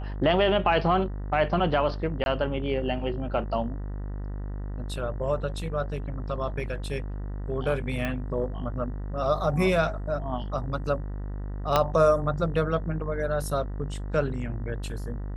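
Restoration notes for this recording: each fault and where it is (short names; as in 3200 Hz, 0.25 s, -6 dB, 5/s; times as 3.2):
buzz 50 Hz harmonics 39 -33 dBFS
2.24–2.26 gap 21 ms
8.05 pop -17 dBFS
11.76 pop -8 dBFS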